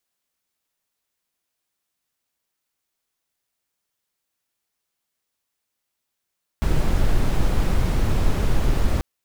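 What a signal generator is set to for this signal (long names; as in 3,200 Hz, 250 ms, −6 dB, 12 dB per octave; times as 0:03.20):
noise brown, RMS −17.5 dBFS 2.39 s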